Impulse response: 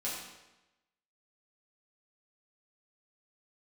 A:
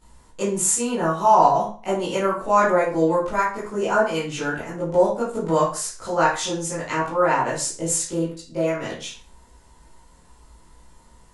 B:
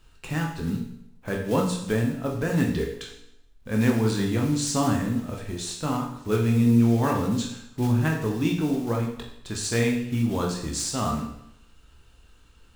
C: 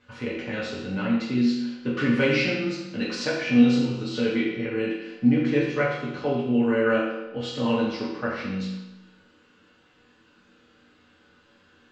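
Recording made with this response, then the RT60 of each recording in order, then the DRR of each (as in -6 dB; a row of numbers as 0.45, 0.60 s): C; 0.40, 0.75, 1.0 s; -10.5, 0.0, -7.5 dB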